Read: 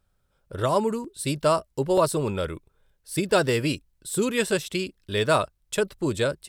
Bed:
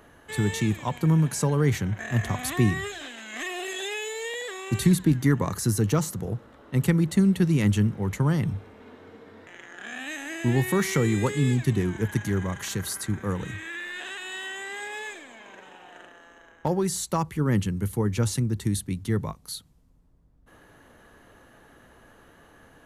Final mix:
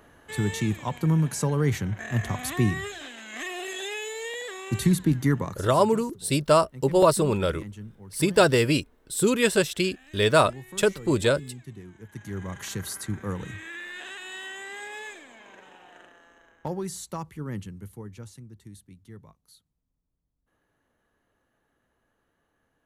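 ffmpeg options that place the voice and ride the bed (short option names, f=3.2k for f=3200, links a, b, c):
-filter_complex "[0:a]adelay=5050,volume=2.5dB[a];[1:a]volume=14dB,afade=t=out:st=5.34:d=0.33:silence=0.141254,afade=t=in:st=12.09:d=0.56:silence=0.16788,afade=t=out:st=15.71:d=2.63:silence=0.141254[b];[a][b]amix=inputs=2:normalize=0"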